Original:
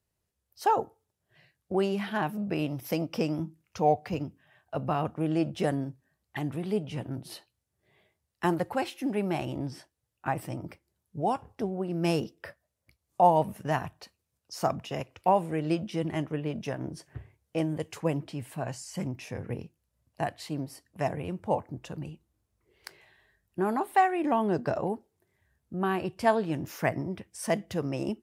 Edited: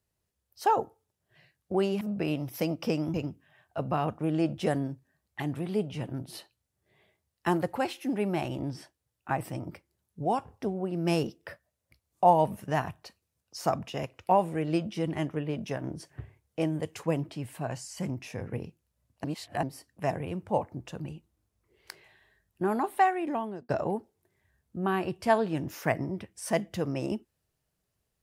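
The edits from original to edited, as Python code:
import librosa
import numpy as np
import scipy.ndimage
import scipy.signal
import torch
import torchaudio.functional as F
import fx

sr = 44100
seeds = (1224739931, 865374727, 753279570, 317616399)

y = fx.edit(x, sr, fx.cut(start_s=2.01, length_s=0.31),
    fx.cut(start_s=3.45, length_s=0.66),
    fx.reverse_span(start_s=20.21, length_s=0.39),
    fx.fade_out_span(start_s=23.75, length_s=0.91, curve='qsin'), tone=tone)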